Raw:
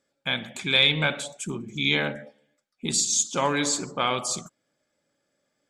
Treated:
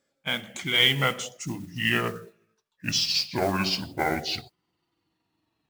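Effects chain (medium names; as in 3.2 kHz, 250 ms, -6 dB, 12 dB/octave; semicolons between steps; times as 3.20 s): pitch bend over the whole clip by -11 st starting unshifted; modulation noise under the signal 20 dB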